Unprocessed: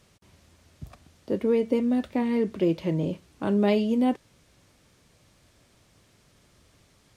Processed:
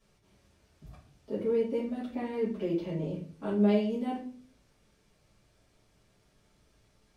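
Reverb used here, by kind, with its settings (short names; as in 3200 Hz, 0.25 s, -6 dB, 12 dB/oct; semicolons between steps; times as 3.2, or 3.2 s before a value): shoebox room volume 39 m³, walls mixed, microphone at 1.6 m; gain -17 dB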